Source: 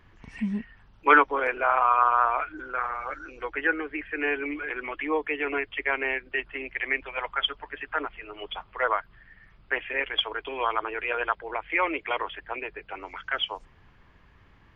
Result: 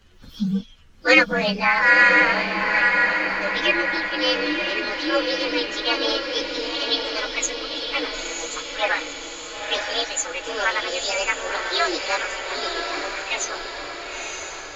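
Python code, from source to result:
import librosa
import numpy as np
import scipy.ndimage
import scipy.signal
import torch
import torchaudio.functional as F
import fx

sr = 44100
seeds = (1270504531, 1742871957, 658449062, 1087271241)

y = fx.partial_stretch(x, sr, pct=129)
y = fx.echo_diffused(y, sr, ms=959, feedback_pct=56, wet_db=-4.0)
y = F.gain(torch.from_numpy(y), 7.0).numpy()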